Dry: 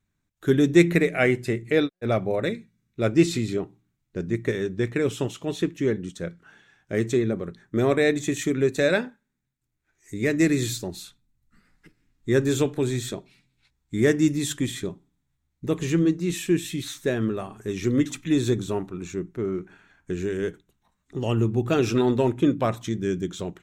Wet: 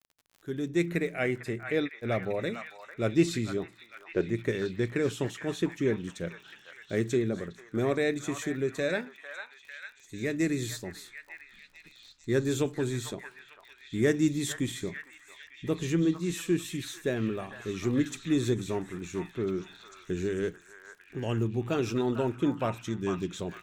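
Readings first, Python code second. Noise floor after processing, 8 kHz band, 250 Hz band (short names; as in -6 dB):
-58 dBFS, -5.5 dB, -6.0 dB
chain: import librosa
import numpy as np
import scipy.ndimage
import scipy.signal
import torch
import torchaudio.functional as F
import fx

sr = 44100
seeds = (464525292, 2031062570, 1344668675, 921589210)

y = fx.fade_in_head(x, sr, length_s=0.96)
y = fx.rider(y, sr, range_db=4, speed_s=2.0)
y = fx.dmg_crackle(y, sr, seeds[0], per_s=36.0, level_db=-38.0)
y = fx.spec_box(y, sr, start_s=3.92, length_s=0.38, low_hz=300.0, high_hz=3400.0, gain_db=10)
y = fx.echo_stepped(y, sr, ms=449, hz=1200.0, octaves=0.7, feedback_pct=70, wet_db=-3.5)
y = y * 10.0 ** (-6.5 / 20.0)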